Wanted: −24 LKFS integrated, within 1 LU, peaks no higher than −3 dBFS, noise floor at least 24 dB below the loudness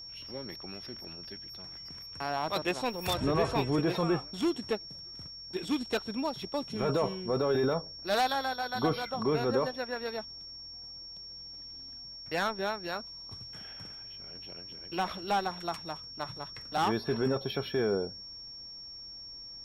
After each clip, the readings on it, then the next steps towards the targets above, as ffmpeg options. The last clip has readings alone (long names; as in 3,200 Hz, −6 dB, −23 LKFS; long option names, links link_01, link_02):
interfering tone 5,500 Hz; level of the tone −43 dBFS; integrated loudness −33.5 LKFS; sample peak −15.0 dBFS; target loudness −24.0 LKFS
→ -af "bandreject=frequency=5500:width=30"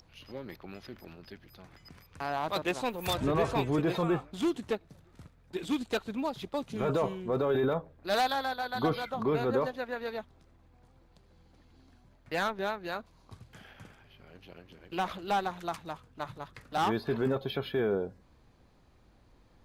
interfering tone none found; integrated loudness −32.0 LKFS; sample peak −15.5 dBFS; target loudness −24.0 LKFS
→ -af "volume=8dB"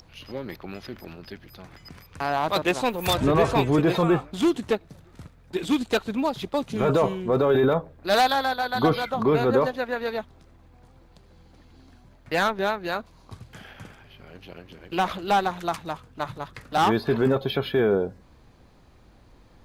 integrated loudness −24.0 LKFS; sample peak −7.5 dBFS; background noise floor −54 dBFS